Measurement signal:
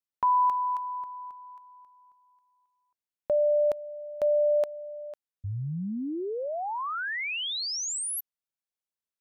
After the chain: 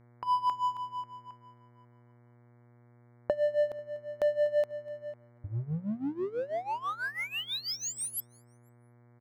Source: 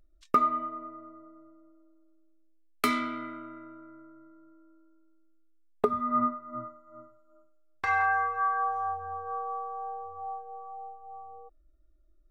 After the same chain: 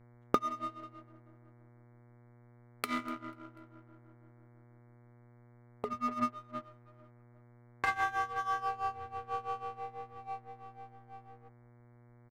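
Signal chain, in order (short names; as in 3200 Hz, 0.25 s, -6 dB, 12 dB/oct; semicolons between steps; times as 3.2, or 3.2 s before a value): Wiener smoothing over 9 samples; compressor 6:1, threshold -27 dBFS; on a send: feedback echo 0.245 s, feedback 47%, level -21.5 dB; on the sum: power-law curve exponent 1.4; tremolo 6.1 Hz, depth 87%; buzz 120 Hz, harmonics 19, -66 dBFS -7 dB/oct; gain +6.5 dB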